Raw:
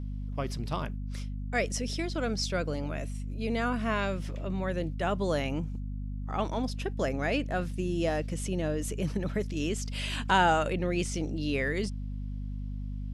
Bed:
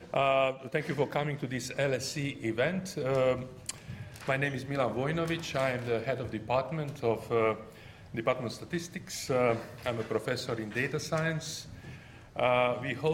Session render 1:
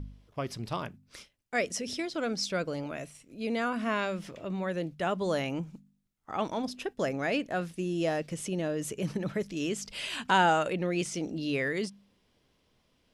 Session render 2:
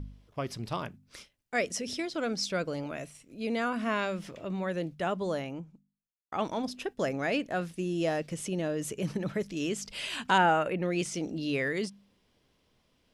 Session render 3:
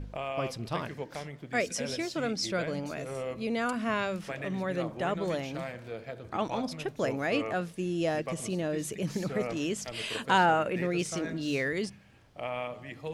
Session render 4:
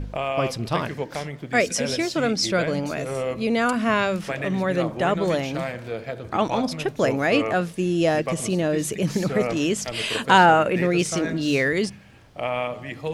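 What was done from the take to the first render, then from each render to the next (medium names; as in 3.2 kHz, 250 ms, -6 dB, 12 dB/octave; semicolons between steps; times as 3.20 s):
de-hum 50 Hz, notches 5
4.85–6.32 s: studio fade out; 10.38–10.83 s: high-order bell 5.5 kHz -10.5 dB
add bed -9 dB
trim +9 dB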